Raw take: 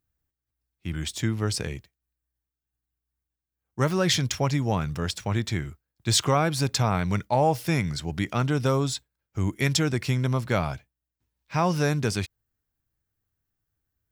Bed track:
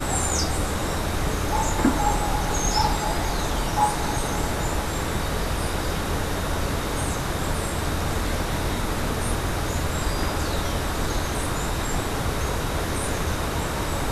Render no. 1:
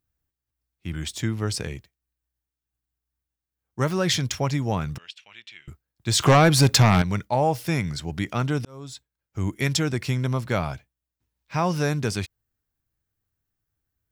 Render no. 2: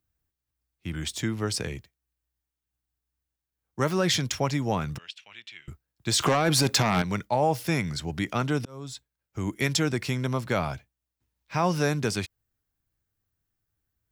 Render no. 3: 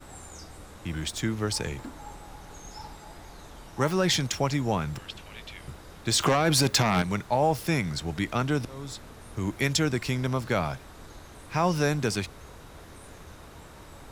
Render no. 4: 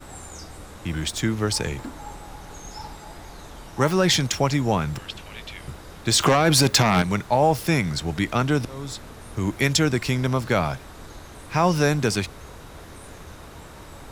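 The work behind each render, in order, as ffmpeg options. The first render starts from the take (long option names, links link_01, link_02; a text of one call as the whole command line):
ffmpeg -i in.wav -filter_complex "[0:a]asettb=1/sr,asplit=3[link_01][link_02][link_03];[link_01]atrim=end=4.984[link_04];[link_02]atrim=start=4.98:end=5.68,asetpts=PTS-STARTPTS,afade=type=in:duration=0.004:curve=qsin,afade=type=out:start_time=0.696:duration=0.004:curve=qsin,bandpass=frequency=2800:width_type=q:width=4.3[link_05];[link_03]atrim=start=5.676[link_06];[link_04][link_05]acrossfade=duration=0.004:curve1=hsin:curve2=qsin[link_07];[link_07][link_06]acrossfade=duration=0.004:curve1=qsin:curve2=hsin,asettb=1/sr,asplit=3[link_08][link_09][link_10];[link_08]atrim=end=6.204[link_11];[link_09]atrim=start=6.2:end=7.02,asetpts=PTS-STARTPTS,afade=type=in:duration=0.004:curve=qsin,afade=type=out:start_time=0.816:duration=0.004:curve=qsin,aeval=exprs='0.316*sin(PI/2*2*val(0)/0.316)':channel_layout=same[link_12];[link_10]atrim=start=7.016[link_13];[link_11][link_12]acrossfade=duration=0.004:curve1=hsin:curve2=qsin[link_14];[link_14][link_13]acrossfade=duration=0.004:curve1=qsin:curve2=hsin,asplit=2[link_15][link_16];[link_15]atrim=end=8.65,asetpts=PTS-STARTPTS,afade=type=out:start_time=8.646:duration=0.004:curve=hsin[link_17];[link_16]atrim=start=8.65,asetpts=PTS-STARTPTS,afade=type=in:duration=0.82[link_18];[link_17][link_18]concat=n=2:v=0:a=1" out.wav
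ffmpeg -i in.wav -filter_complex "[0:a]acrossover=split=170|3900[link_01][link_02][link_03];[link_01]acompressor=threshold=-34dB:ratio=6[link_04];[link_04][link_02][link_03]amix=inputs=3:normalize=0,alimiter=limit=-13dB:level=0:latency=1:release=25" out.wav
ffmpeg -i in.wav -i bed.wav -filter_complex "[1:a]volume=-21dB[link_01];[0:a][link_01]amix=inputs=2:normalize=0" out.wav
ffmpeg -i in.wav -af "volume=5dB" out.wav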